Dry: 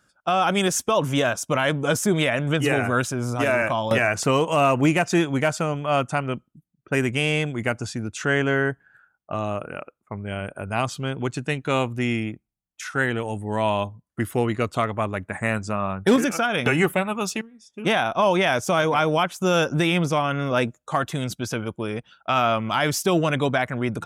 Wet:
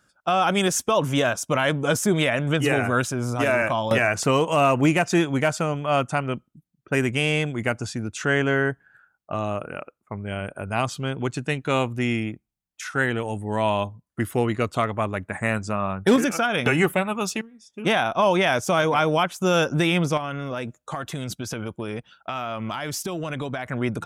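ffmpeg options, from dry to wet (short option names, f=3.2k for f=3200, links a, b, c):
-filter_complex "[0:a]asettb=1/sr,asplit=3[a][b][c];[a]atrim=end=20.174[d];[b]atrim=start=20.17:end=23.66,asetpts=PTS-STARTPTS,afade=t=in:d=0.004:c=qsin,afade=t=out:st=3.486:d=0.004:c=qsin,acompressor=threshold=-25dB:ratio=10:attack=3.2:release=140:knee=1:detection=peak[e];[c]atrim=start=23.656[f];[d][e]acrossfade=d=0.004:c1=hsin:c2=qsin[g];[g][f]acrossfade=d=0.004:c1=qsin:c2=hsin"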